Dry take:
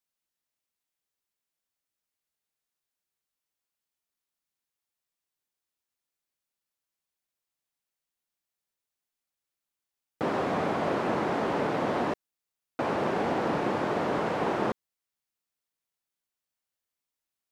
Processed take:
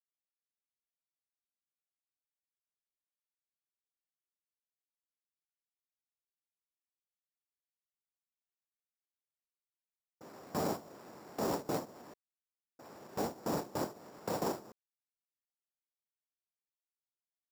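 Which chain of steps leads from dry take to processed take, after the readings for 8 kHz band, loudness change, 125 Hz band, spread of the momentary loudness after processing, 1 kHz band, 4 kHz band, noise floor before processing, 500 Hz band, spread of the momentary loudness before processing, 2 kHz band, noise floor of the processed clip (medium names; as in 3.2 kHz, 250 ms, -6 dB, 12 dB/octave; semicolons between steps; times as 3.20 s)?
+4.0 dB, -9.5 dB, -9.5 dB, 18 LU, -12.5 dB, -8.0 dB, under -85 dBFS, -11.0 dB, 5 LU, -16.5 dB, under -85 dBFS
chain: peak limiter -20 dBFS, peak gain reduction 4.5 dB; level-controlled noise filter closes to 460 Hz, open at -28.5 dBFS; sample-and-hold 7×; gate with hold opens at -20 dBFS; dynamic bell 2 kHz, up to -7 dB, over -49 dBFS, Q 0.77; trim -3 dB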